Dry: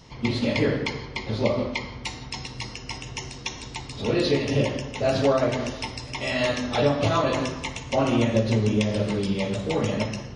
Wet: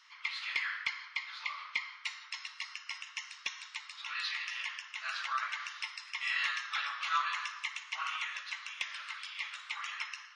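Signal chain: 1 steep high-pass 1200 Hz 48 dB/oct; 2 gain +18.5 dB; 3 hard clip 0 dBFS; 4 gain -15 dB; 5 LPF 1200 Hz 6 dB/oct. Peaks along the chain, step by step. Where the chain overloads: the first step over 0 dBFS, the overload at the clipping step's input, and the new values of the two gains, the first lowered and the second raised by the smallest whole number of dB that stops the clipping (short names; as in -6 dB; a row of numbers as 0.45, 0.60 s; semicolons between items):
-14.0, +4.5, 0.0, -15.0, -18.5 dBFS; step 2, 4.5 dB; step 2 +13.5 dB, step 4 -10 dB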